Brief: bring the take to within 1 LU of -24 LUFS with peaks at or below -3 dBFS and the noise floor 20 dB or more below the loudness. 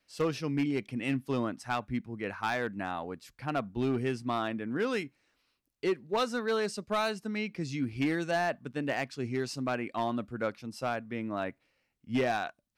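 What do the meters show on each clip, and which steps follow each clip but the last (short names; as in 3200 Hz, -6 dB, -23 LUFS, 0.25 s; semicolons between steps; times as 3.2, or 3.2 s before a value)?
clipped 1.0%; flat tops at -23.0 dBFS; loudness -33.0 LUFS; peak -23.0 dBFS; loudness target -24.0 LUFS
-> clip repair -23 dBFS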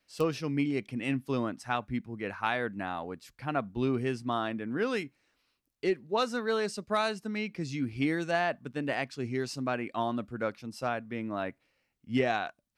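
clipped 0.0%; loudness -32.5 LUFS; peak -14.0 dBFS; loudness target -24.0 LUFS
-> gain +8.5 dB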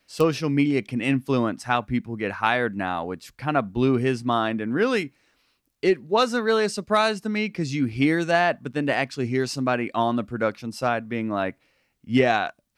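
loudness -24.0 LUFS; peak -5.5 dBFS; noise floor -70 dBFS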